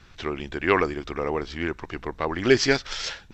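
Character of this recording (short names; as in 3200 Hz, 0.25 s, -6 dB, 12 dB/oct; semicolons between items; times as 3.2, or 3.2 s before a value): noise floor -51 dBFS; spectral tilt -4.5 dB/oct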